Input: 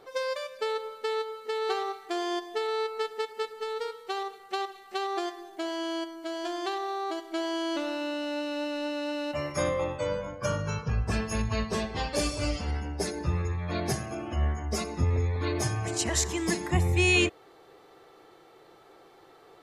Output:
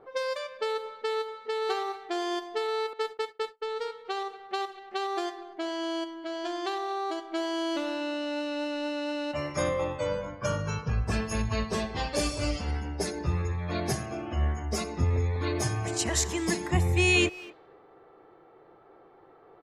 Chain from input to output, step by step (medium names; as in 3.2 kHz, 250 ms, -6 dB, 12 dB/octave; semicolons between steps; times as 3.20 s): 2.93–3.77 s: gate -36 dBFS, range -36 dB; level-controlled noise filter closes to 1.3 kHz, open at -26.5 dBFS; speakerphone echo 240 ms, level -18 dB